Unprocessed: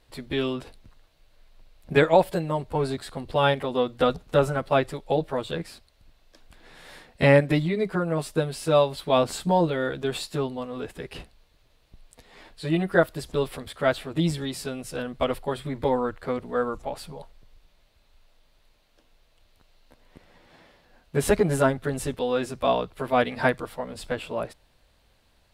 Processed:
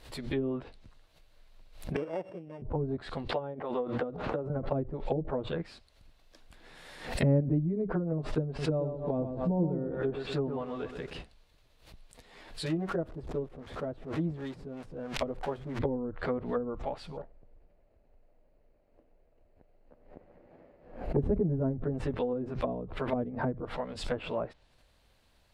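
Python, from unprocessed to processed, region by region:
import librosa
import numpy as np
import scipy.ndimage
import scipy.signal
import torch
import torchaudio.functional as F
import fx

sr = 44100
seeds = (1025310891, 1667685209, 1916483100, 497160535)

y = fx.chain(x, sr, fx.sample_sort(block=16),
    fx.highpass(hz=170.0, slope=12),
    fx.tilt_eq(slope=4.5), at=(1.96, 2.62))
y = fx.chain(y, sr, fx.highpass(hz=680.0, slope=6),
    fx.pre_swell(db_per_s=74.0), at=(3.29, 4.5))
y = fx.chain(y, sr, fx.high_shelf(hz=4200.0, db=-5.5),
    fx.echo_crushed(ms=125, feedback_pct=35, bits=8, wet_db=-7.0), at=(8.46, 11.13))
y = fx.chain(y, sr, fx.crossing_spikes(level_db=-18.5),
    fx.low_shelf(hz=370.0, db=-6.0), at=(12.66, 15.79))
y = fx.chain(y, sr, fx.lower_of_two(delay_ms=0.42),
    fx.curve_eq(hz=(130.0, 610.0, 5800.0), db=(0, 8, -27)), at=(17.17, 21.19))
y = fx.env_lowpass_down(y, sr, base_hz=330.0, full_db=-21.0)
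y = fx.pre_swell(y, sr, db_per_s=100.0)
y = y * librosa.db_to_amplitude(-3.5)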